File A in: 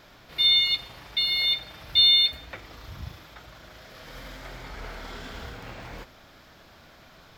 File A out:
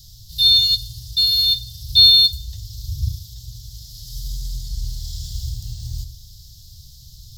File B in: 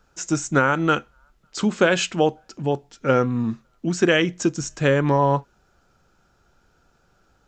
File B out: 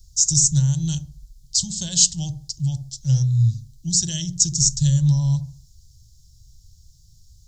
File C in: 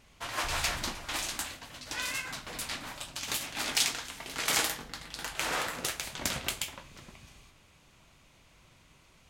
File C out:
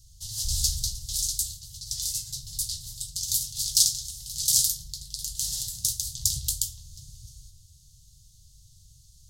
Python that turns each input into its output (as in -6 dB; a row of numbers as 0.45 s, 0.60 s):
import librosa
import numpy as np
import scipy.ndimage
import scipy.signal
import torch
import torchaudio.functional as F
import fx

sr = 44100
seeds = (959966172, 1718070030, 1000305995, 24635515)

y = scipy.signal.sosfilt(scipy.signal.cheby2(4, 40, [230.0, 2500.0], 'bandstop', fs=sr, output='sos'), x)
y = fx.echo_wet_lowpass(y, sr, ms=67, feedback_pct=33, hz=680.0, wet_db=-8.0)
y = y * 10.0 ** (-2 / 20.0) / np.max(np.abs(y))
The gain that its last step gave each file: +16.5 dB, +15.5 dB, +10.0 dB